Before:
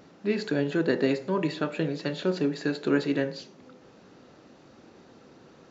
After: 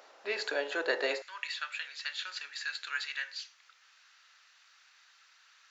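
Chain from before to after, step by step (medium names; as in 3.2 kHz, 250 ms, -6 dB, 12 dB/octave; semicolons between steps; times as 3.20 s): high-pass 570 Hz 24 dB/octave, from 1.22 s 1.5 kHz; trim +2 dB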